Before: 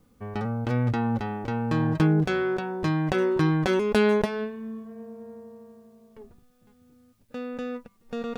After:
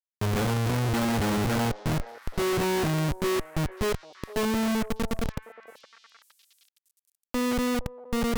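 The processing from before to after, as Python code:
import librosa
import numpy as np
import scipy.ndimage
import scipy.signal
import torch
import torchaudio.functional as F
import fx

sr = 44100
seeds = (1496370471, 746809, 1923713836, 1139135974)

y = fx.gate_flip(x, sr, shuts_db=-14.0, range_db=-34)
y = fx.schmitt(y, sr, flips_db=-37.0)
y = fx.echo_stepped(y, sr, ms=465, hz=610.0, octaves=1.4, feedback_pct=70, wet_db=-11.5)
y = y * librosa.db_to_amplitude(6.0)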